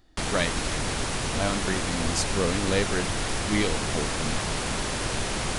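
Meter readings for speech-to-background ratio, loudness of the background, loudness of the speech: -1.5 dB, -28.5 LUFS, -30.0 LUFS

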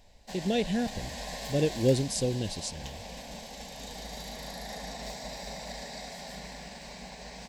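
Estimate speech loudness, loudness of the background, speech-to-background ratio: -30.0 LUFS, -40.5 LUFS, 10.5 dB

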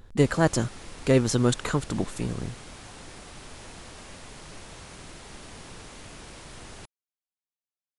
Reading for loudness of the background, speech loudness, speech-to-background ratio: -44.0 LUFS, -25.5 LUFS, 18.5 dB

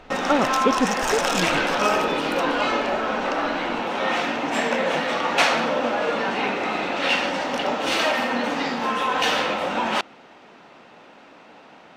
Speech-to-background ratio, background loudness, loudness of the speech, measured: -3.0 dB, -22.5 LUFS, -25.5 LUFS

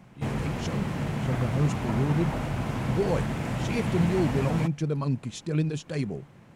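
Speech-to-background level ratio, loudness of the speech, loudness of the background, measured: 0.5 dB, -30.0 LUFS, -30.5 LUFS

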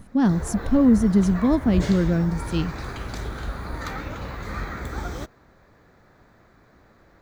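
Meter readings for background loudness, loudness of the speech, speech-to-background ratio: -32.5 LUFS, -21.0 LUFS, 11.5 dB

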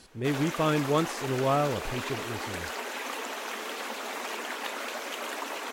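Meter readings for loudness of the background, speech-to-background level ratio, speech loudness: -35.0 LUFS, 6.0 dB, -29.0 LUFS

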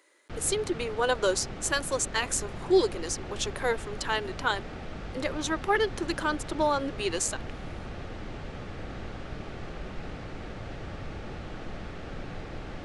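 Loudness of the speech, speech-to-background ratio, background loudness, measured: -29.0 LUFS, 11.5 dB, -40.5 LUFS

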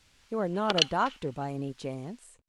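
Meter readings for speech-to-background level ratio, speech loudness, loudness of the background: -3.5 dB, -32.0 LUFS, -28.5 LUFS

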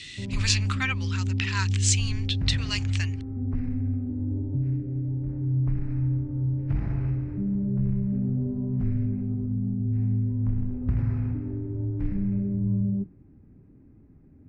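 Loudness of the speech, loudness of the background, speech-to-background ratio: -29.0 LUFS, -28.0 LUFS, -1.0 dB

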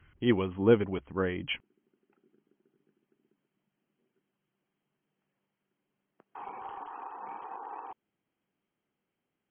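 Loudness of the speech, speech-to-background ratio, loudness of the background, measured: -29.0 LUFS, 14.5 dB, -43.5 LUFS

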